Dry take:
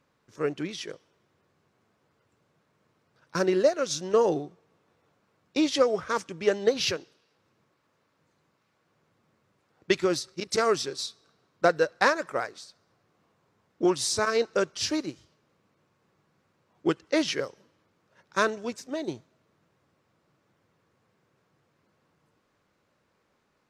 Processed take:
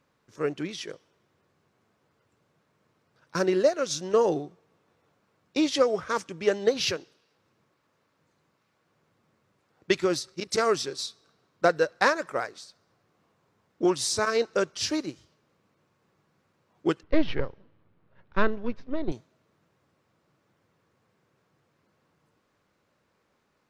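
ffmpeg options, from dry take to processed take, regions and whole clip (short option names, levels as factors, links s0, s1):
-filter_complex "[0:a]asettb=1/sr,asplit=3[s0][s1][s2];[s0]atrim=end=17.034[s3];[s1]atrim=start=17.03:end=19.12,asetpts=PTS-STARTPTS,afade=t=in:d=0.004:c=qsin,afade=t=out:st=2.086:d=0.004:c=qsin,aeval=exprs='if(lt(val(0),0),0.447*val(0),val(0))':c=same,lowpass=f=4000:w=0.5412,lowpass=f=4000:w=1.3066,aemphasis=mode=reproduction:type=bsi[s4];[s2]atrim=start=19.116[s5];[s3][s4]acrossfade=d=0.004:c1=hsin:c2=qsin[s6];[s6][s5]acrossfade=d=0.004:c1=qsin:c2=hsin"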